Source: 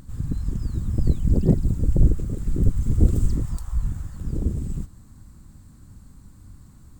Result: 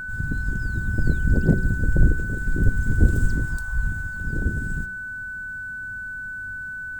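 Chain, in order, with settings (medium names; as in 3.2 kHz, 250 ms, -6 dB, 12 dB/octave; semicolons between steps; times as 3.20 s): whistle 1.5 kHz -30 dBFS; de-hum 62.63 Hz, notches 8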